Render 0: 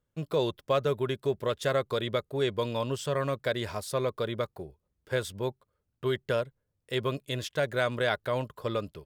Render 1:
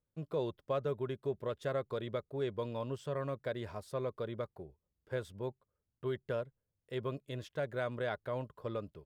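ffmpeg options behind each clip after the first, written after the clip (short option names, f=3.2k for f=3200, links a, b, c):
-af "highshelf=f=2.1k:g=-11.5,volume=-7dB"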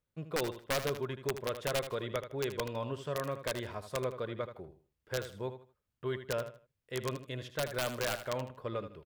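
-filter_complex "[0:a]acrossover=split=2800[a][b];[a]crystalizer=i=7:c=0[c];[c][b]amix=inputs=2:normalize=0,aeval=exprs='(mod(16.8*val(0)+1,2)-1)/16.8':c=same,aecho=1:1:78|156|234:0.299|0.0806|0.0218"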